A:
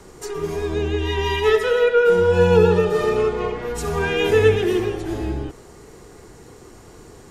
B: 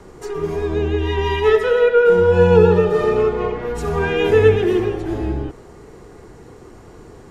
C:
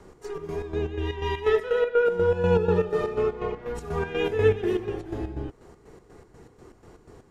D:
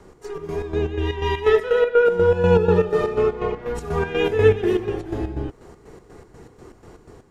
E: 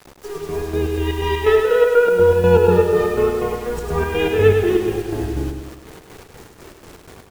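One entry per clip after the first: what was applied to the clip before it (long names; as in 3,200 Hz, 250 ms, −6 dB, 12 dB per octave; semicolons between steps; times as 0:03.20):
high-shelf EQ 3,300 Hz −11 dB; level +3 dB
square-wave tremolo 4.1 Hz, depth 60%, duty 55%; level −7.5 dB
automatic gain control gain up to 3.5 dB; level +2 dB
bit reduction 7 bits; repeating echo 103 ms, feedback 50%, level −5.5 dB; level +1.5 dB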